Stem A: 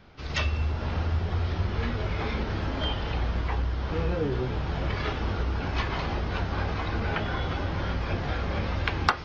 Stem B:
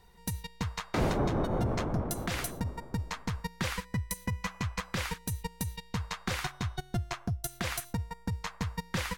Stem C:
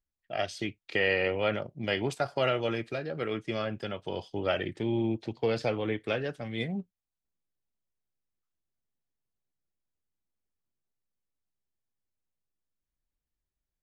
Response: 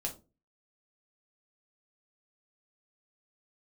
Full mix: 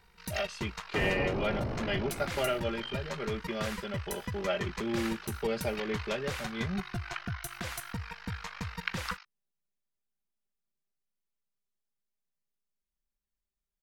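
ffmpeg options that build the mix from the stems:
-filter_complex "[0:a]highpass=f=1.2k:w=0.5412,highpass=f=1.2k:w=1.3066,bandreject=f=3.4k:w=8.8,tremolo=f=49:d=0.947,volume=-3dB[a];[1:a]volume=-4.5dB[b];[2:a]aecho=1:1:5:0.89,volume=-6dB[c];[a][b][c]amix=inputs=3:normalize=0"

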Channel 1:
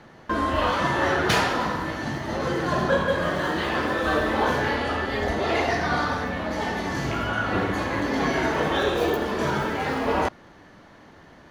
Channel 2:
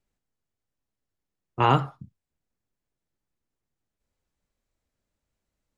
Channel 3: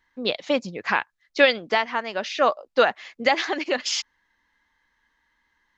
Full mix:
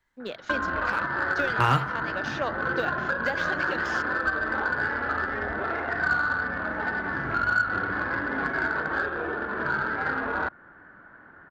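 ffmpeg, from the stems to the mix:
-filter_complex "[0:a]equalizer=f=310:w=1.5:g=2,alimiter=limit=-15.5dB:level=0:latency=1:release=290,lowpass=f=1.5k:t=q:w=10,adelay=200,volume=-5.5dB[a];[1:a]deesser=0.85,equalizer=f=1.5k:t=o:w=0.76:g=14.5,volume=2.5dB[b];[2:a]deesser=0.8,volume=-6dB[c];[a][b][c]amix=inputs=3:normalize=0,acrossover=split=130|3000[d][e][f];[e]acompressor=threshold=-24dB:ratio=2.5[g];[d][g][f]amix=inputs=3:normalize=0,aeval=exprs='0.299*(cos(1*acos(clip(val(0)/0.299,-1,1)))-cos(1*PI/2))+0.0106*(cos(7*acos(clip(val(0)/0.299,-1,1)))-cos(7*PI/2))':c=same"

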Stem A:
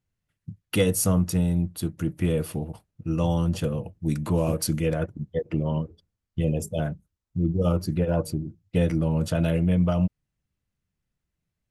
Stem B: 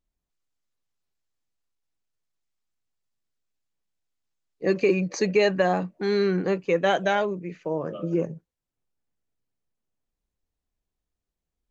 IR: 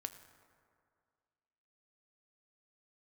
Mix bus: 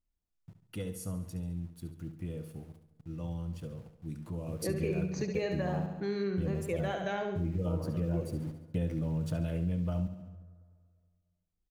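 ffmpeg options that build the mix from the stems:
-filter_complex "[0:a]aeval=exprs='val(0)*gte(abs(val(0)),0.01)':c=same,volume=-11dB,afade=t=in:st=4.46:d=0.33:silence=0.266073,asplit=3[a][b][c];[b]volume=-6.5dB[d];[c]volume=-8.5dB[e];[1:a]volume=-9.5dB,asplit=2[f][g];[g]volume=-6.5dB[h];[2:a]atrim=start_sample=2205[i];[d][i]afir=irnorm=-1:irlink=0[j];[e][h]amix=inputs=2:normalize=0,aecho=0:1:70|140|210|280|350|420|490:1|0.51|0.26|0.133|0.0677|0.0345|0.0176[k];[a][f][j][k]amix=inputs=4:normalize=0,lowshelf=f=280:g=7.5,acompressor=threshold=-32dB:ratio=2.5"

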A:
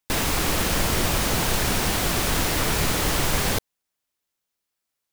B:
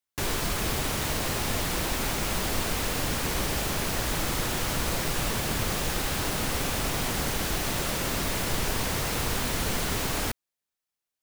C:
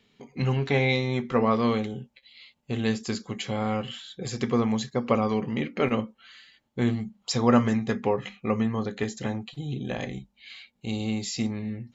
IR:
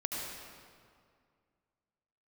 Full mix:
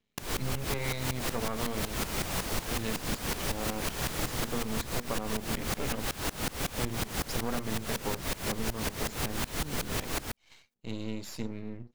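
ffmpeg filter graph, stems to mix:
-filter_complex "[0:a]adelay=1200,volume=-13dB[a];[1:a]dynaudnorm=f=110:g=3:m=4dB,aeval=exprs='val(0)*pow(10,-23*if(lt(mod(-5.4*n/s,1),2*abs(-5.4)/1000),1-mod(-5.4*n/s,1)/(2*abs(-5.4)/1000),(mod(-5.4*n/s,1)-2*abs(-5.4)/1000)/(1-2*abs(-5.4)/1000))/20)':c=same,volume=-1dB[b];[2:a]agate=range=-7dB:threshold=-44dB:ratio=16:detection=peak,lowshelf=f=230:g=5.5,aeval=exprs='max(val(0),0)':c=same,volume=-6.5dB,asplit=2[c][d];[d]apad=whole_len=278817[e];[a][e]sidechaincompress=threshold=-34dB:ratio=8:attack=47:release=577[f];[f][b][c]amix=inputs=3:normalize=0,acompressor=threshold=-27dB:ratio=6"

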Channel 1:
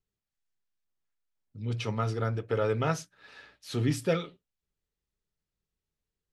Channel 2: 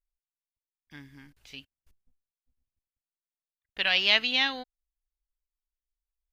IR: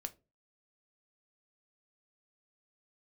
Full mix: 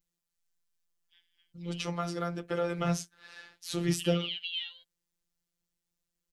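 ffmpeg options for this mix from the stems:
-filter_complex "[0:a]equalizer=f=7k:t=o:w=1.6:g=5,volume=3dB[a];[1:a]alimiter=limit=-15.5dB:level=0:latency=1,bandpass=f=3.1k:t=q:w=9.1:csg=0,adelay=200,volume=1.5dB[b];[a][b]amix=inputs=2:normalize=0,afftfilt=real='hypot(re,im)*cos(PI*b)':imag='0':win_size=1024:overlap=0.75,highshelf=f=11k:g=7.5,acrossover=split=410[c][d];[d]acompressor=threshold=-30dB:ratio=6[e];[c][e]amix=inputs=2:normalize=0"

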